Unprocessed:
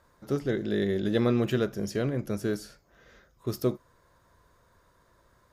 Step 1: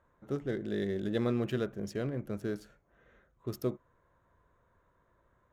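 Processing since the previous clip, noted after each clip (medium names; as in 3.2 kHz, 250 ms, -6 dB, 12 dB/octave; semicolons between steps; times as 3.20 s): local Wiener filter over 9 samples; trim -6 dB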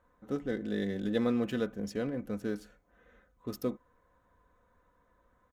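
comb 4 ms, depth 55%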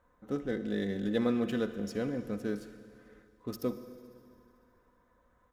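reverberation RT60 2.4 s, pre-delay 49 ms, DRR 11 dB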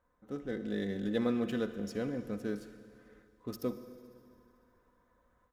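level rider gain up to 5 dB; trim -7 dB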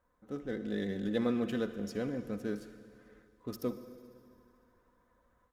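vibrato 13 Hz 32 cents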